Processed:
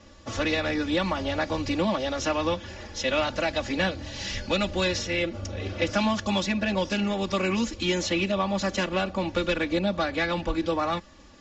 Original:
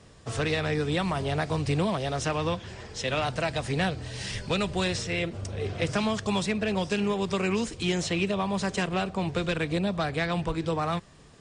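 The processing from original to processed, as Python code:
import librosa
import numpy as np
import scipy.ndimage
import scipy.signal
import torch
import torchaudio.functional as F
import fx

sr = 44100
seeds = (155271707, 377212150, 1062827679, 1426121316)

y = scipy.signal.sosfilt(scipy.signal.butter(16, 7200.0, 'lowpass', fs=sr, output='sos'), x)
y = y + 0.97 * np.pad(y, (int(3.5 * sr / 1000.0), 0))[:len(y)]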